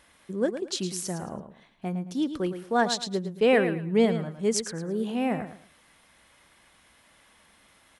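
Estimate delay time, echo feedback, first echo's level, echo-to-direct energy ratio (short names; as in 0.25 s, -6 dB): 0.11 s, 25%, -10.0 dB, -9.5 dB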